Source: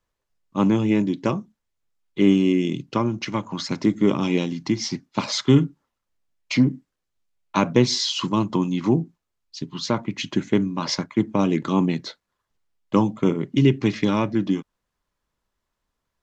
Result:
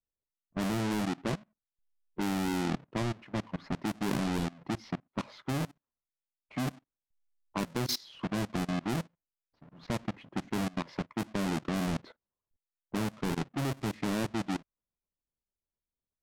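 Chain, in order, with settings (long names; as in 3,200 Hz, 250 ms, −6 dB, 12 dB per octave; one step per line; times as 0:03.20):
each half-wave held at its own peak
low-pass that shuts in the quiet parts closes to 730 Hz, open at −11.5 dBFS
output level in coarse steps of 22 dB
level −8.5 dB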